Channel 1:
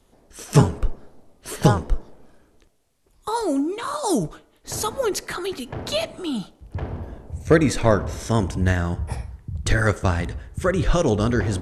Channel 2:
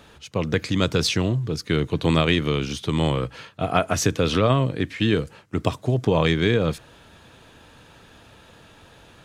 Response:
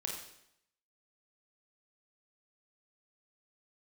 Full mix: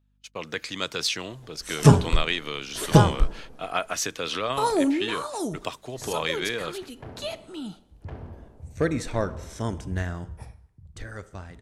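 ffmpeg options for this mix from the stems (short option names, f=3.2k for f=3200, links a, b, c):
-filter_complex "[0:a]adelay=1300,volume=-0.5dB,afade=t=out:st=4.81:d=0.57:silence=0.334965,afade=t=out:st=10.06:d=0.66:silence=0.316228,asplit=2[a][b];[b]volume=-16dB[c];[1:a]agate=range=-34dB:threshold=-40dB:ratio=16:detection=peak,highpass=f=1.1k:p=1,aeval=exprs='val(0)+0.000631*(sin(2*PI*50*n/s)+sin(2*PI*2*50*n/s)/2+sin(2*PI*3*50*n/s)/3+sin(2*PI*4*50*n/s)/4+sin(2*PI*5*50*n/s)/5)':c=same,volume=-2dB[d];[2:a]atrim=start_sample=2205[e];[c][e]afir=irnorm=-1:irlink=0[f];[a][d][f]amix=inputs=3:normalize=0"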